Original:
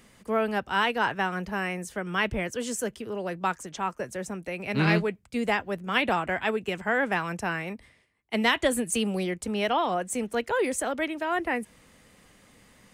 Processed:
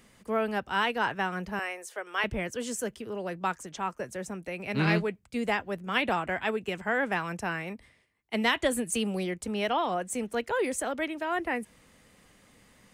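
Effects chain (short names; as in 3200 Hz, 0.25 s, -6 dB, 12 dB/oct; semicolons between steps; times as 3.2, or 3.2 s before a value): 1.59–2.24 HPF 420 Hz 24 dB/oct; gain -2.5 dB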